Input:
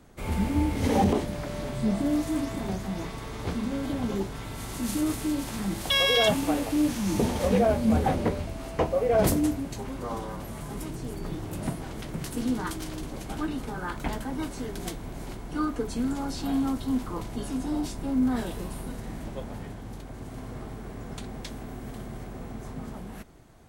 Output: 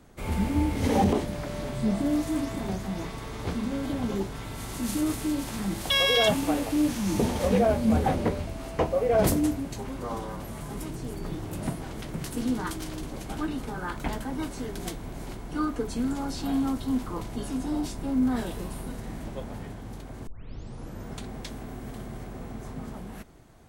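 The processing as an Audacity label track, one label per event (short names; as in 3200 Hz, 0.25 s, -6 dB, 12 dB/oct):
20.270000	20.270000	tape start 0.82 s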